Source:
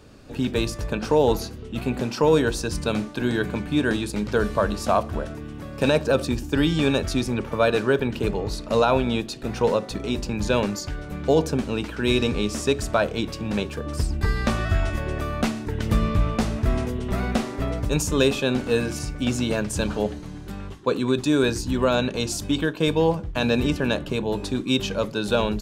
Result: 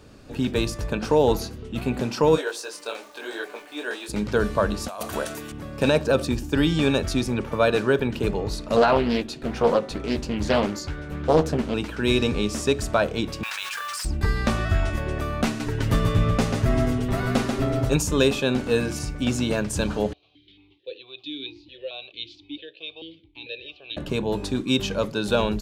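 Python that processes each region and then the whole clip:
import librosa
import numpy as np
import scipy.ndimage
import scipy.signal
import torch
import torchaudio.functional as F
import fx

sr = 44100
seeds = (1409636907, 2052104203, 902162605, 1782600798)

y = fx.highpass(x, sr, hz=430.0, slope=24, at=(2.35, 4.08), fade=0.02)
y = fx.dmg_crackle(y, sr, seeds[0], per_s=450.0, level_db=-39.0, at=(2.35, 4.08), fade=0.02)
y = fx.detune_double(y, sr, cents=42, at=(2.35, 4.08), fade=0.02)
y = fx.chain(y, sr, fx.riaa(side='recording'),
    fx.over_compress(threshold_db=-30.0, ratio=-1.0),
    fx.notch(hz=5200.0, q=20.0), at=(4.88, 5.52))
y = fx.chain(y, sr, fx.bass_treble(bass_db=-1, treble_db=-4),
    fx.doubler(ms=13.0, db=-7.0),
    fx.doppler_dist(depth_ms=0.56), at=(8.76, 11.74))
y = fx.chain(y, sr, fx.highpass(hz=1200.0, slope=24),
    fx.mod_noise(seeds[1], snr_db=17),
    fx.env_flatten(amount_pct=100), at=(13.43, 14.05))
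y = fx.chain(y, sr, fx.comb(ms=7.4, depth=0.64),
    fx.echo_single(ms=138, db=-5.0), at=(15.46, 17.96))
y = fx.chain(y, sr, fx.curve_eq(hz=(110.0, 230.0, 330.0, 630.0, 970.0, 1500.0, 2300.0, 3700.0, 10000.0), db=(0, -25, -4, -12, -15, -14, 0, 15, -26)),
    fx.vowel_held(hz=4.5), at=(20.13, 23.97))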